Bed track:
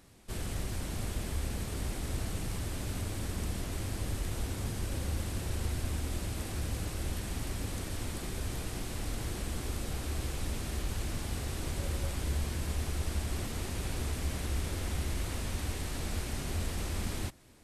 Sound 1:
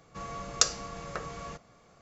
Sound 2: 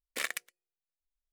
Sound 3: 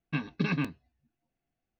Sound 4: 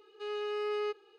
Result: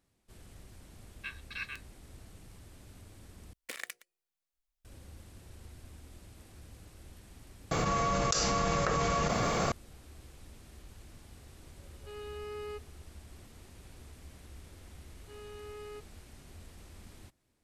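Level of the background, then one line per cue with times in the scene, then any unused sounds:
bed track -17 dB
1.11 add 3 -3.5 dB + steep high-pass 1300 Hz
3.53 replace with 2 -2.5 dB + negative-ratio compressor -38 dBFS, ratio -0.5
7.71 replace with 1 -10 dB + fast leveller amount 100%
11.86 add 4 -8 dB
15.08 add 4 -12.5 dB

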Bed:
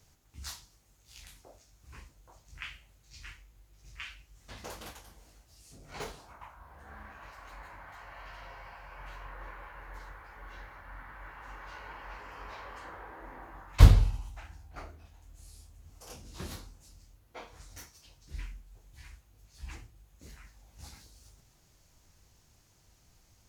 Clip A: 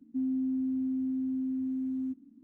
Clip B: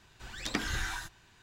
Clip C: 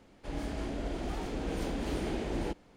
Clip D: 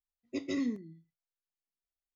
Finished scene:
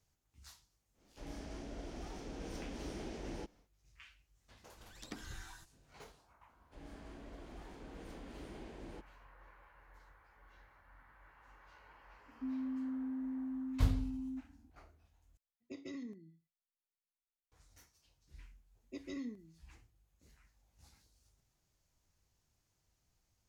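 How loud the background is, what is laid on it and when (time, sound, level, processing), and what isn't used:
bed -15 dB
0.93 add C -10.5 dB, fades 0.10 s + bell 5700 Hz +9.5 dB 0.39 oct
4.57 add B -12.5 dB + bell 2100 Hz -6.5 dB 2 oct
6.48 add C -16 dB
12.27 add A -7 dB + HPF 220 Hz
15.37 replace with D -8.5 dB + compressor, threshold -33 dBFS
18.59 add D -10.5 dB

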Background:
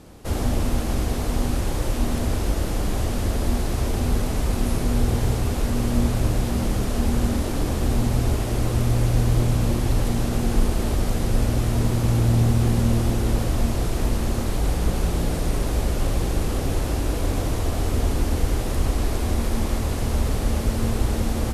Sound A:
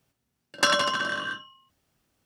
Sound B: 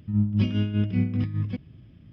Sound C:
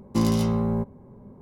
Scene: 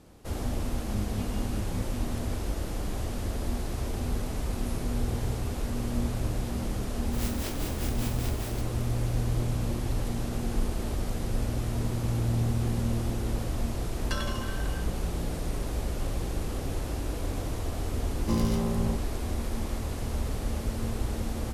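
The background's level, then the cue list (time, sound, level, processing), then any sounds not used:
background -8.5 dB
0.78 add B -12.5 dB
7.05 add B -17 dB + spectral contrast lowered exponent 0.11
13.48 add A -14 dB
18.13 add C -6 dB

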